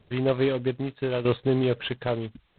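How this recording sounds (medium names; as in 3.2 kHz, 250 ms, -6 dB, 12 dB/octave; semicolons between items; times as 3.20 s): tremolo saw down 0.8 Hz, depth 65%; G.726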